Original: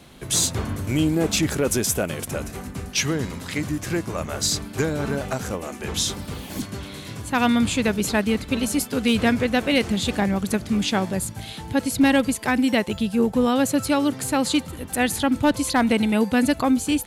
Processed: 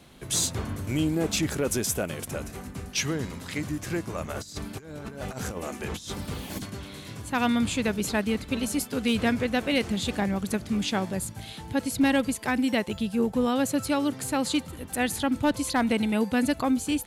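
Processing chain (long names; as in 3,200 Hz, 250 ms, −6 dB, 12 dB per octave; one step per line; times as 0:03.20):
0:04.30–0:06.70: compressor whose output falls as the input rises −29 dBFS, ratio −0.5
level −5 dB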